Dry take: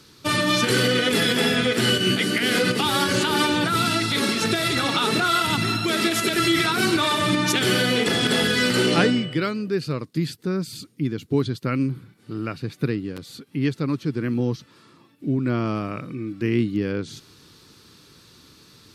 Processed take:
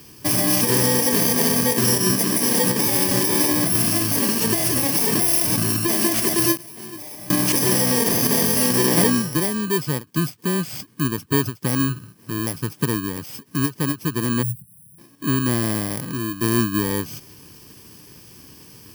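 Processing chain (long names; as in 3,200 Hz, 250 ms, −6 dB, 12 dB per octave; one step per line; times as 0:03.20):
samples in bit-reversed order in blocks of 32 samples
0:06.57–0:07.37: noise gate with hold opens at −9 dBFS
0:14.42–0:14.98: gain on a spectral selection 210–8,300 Hz −30 dB
in parallel at +0.5 dB: downward compressor, threshold −31 dBFS, peak gain reduction 16 dB
on the sum: every ending faded ahead of time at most 330 dB per second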